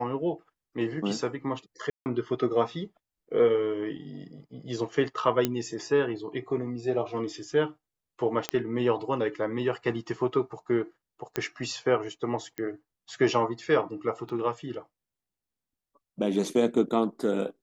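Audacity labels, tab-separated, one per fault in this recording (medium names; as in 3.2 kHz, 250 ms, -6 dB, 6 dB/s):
1.900000	2.060000	dropout 159 ms
5.450000	5.450000	pop -10 dBFS
8.490000	8.490000	pop -11 dBFS
11.360000	11.360000	pop -13 dBFS
12.580000	12.580000	pop -20 dBFS
14.290000	14.300000	dropout 5.1 ms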